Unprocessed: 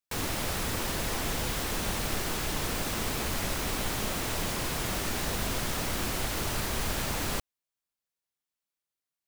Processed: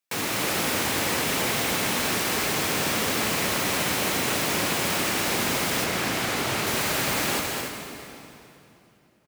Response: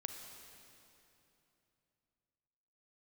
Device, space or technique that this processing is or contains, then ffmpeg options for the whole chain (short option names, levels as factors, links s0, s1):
stadium PA: -filter_complex "[0:a]highpass=160,equalizer=f=2300:t=o:w=0.63:g=3.5,aecho=1:1:212.8|282.8:0.501|0.447[s0];[1:a]atrim=start_sample=2205[s1];[s0][s1]afir=irnorm=-1:irlink=0,asettb=1/sr,asplit=3[s2][s3][s4];[s2]atrim=end=5.844[s5];[s3]atrim=start=5.84:end=6.67,asetpts=PTS-STARTPTS,afade=t=in:d=0.004:c=qsin,afade=t=out:st=0.826:d=0.004:c=qsin,highshelf=f=6700:g=-6[s6];[s4]atrim=start=6.666[s7];[s5][s6]acrossfade=d=0.004:c1=hsin:c2=qsin[s8];[s8][s7]acrossfade=d=0.004:c1=qsin:c2=hsin,volume=2.37"